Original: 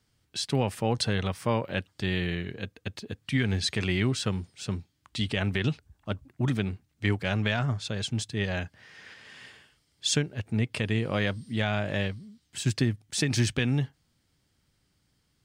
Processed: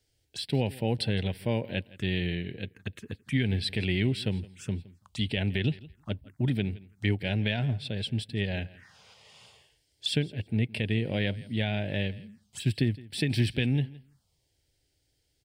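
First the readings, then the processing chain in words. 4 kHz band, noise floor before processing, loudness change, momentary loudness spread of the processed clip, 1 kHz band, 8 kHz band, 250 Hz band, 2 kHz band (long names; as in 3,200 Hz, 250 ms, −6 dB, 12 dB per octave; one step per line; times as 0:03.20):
−1.5 dB, −72 dBFS, −1.0 dB, 11 LU, −7.5 dB, −11.0 dB, −0.5 dB, −3.0 dB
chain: on a send: repeating echo 166 ms, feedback 16%, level −20.5 dB
on the sum: phaser swept by the level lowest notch 190 Hz, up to 1,200 Hz, full sweep at −32.5 dBFS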